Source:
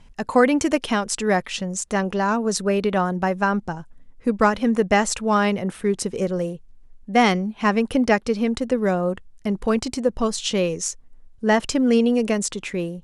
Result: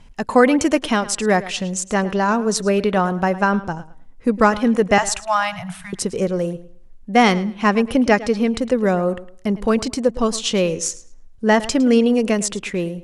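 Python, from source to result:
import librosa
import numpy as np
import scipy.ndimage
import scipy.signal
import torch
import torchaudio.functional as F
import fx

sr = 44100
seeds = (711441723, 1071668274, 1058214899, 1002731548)

y = fx.cheby1_bandstop(x, sr, low_hz=180.0, high_hz=640.0, order=5, at=(4.98, 5.93))
y = fx.echo_tape(y, sr, ms=108, feedback_pct=26, wet_db=-15.0, lp_hz=5600.0, drive_db=10.0, wow_cents=18)
y = y * 10.0 ** (3.0 / 20.0)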